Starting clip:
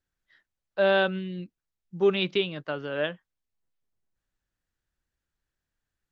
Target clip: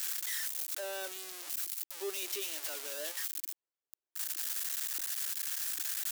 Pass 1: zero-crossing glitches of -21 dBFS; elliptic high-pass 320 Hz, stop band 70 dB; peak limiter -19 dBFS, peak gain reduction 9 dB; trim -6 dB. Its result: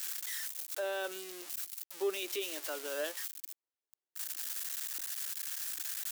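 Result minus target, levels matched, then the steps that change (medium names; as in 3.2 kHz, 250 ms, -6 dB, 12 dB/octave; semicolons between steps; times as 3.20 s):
zero-crossing glitches: distortion -11 dB
change: zero-crossing glitches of -9.5 dBFS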